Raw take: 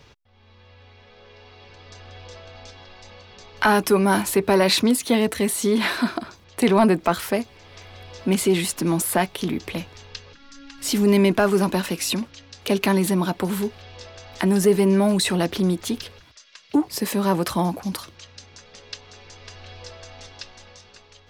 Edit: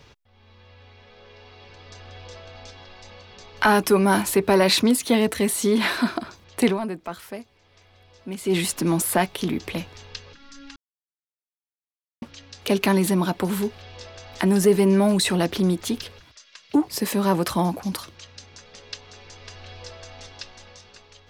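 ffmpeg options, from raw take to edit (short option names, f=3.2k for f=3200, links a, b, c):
-filter_complex "[0:a]asplit=5[a][b][c][d][e];[a]atrim=end=6.78,asetpts=PTS-STARTPTS,afade=t=out:st=6.65:d=0.13:silence=0.237137[f];[b]atrim=start=6.78:end=8.43,asetpts=PTS-STARTPTS,volume=-12.5dB[g];[c]atrim=start=8.43:end=10.76,asetpts=PTS-STARTPTS,afade=t=in:d=0.13:silence=0.237137,afade=t=out:st=2.326:d=0.004:c=hsin[h];[d]atrim=start=10.76:end=12.22,asetpts=PTS-STARTPTS,volume=0[i];[e]atrim=start=12.22,asetpts=PTS-STARTPTS,afade=t=in:d=0.004:c=hsin[j];[f][g][h][i][j]concat=n=5:v=0:a=1"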